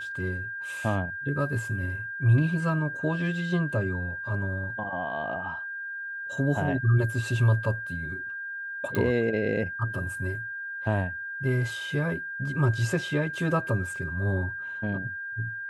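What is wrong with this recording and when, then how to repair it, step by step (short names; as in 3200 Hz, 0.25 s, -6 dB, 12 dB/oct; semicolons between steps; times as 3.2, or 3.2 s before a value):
tone 1600 Hz -33 dBFS
8.95 pop -15 dBFS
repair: de-click; notch 1600 Hz, Q 30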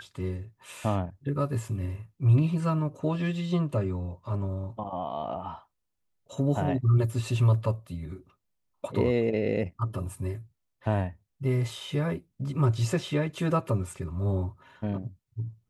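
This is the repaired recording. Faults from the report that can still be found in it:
none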